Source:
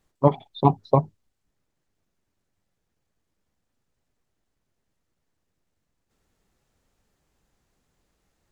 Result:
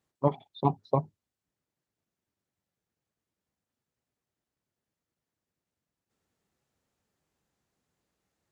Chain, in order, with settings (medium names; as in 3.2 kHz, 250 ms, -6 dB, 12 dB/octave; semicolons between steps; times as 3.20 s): high-pass 86 Hz 12 dB/octave; trim -7.5 dB